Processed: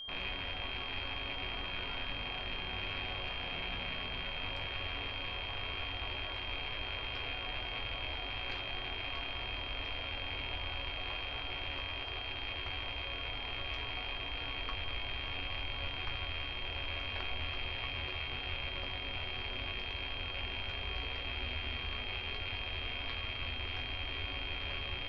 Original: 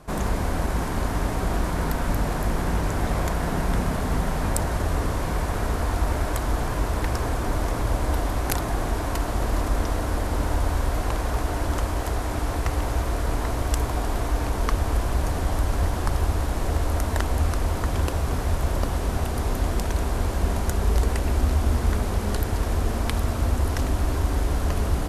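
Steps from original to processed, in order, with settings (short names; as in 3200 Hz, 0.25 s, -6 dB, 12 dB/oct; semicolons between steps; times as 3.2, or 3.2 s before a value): rattling part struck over -30 dBFS, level -12 dBFS; elliptic low-pass 4500 Hz, stop band 70 dB; bell 190 Hz -8 dB 1.8 oct; resonator bank F#2 sus4, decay 0.21 s; whine 3200 Hz -38 dBFS; gain -4 dB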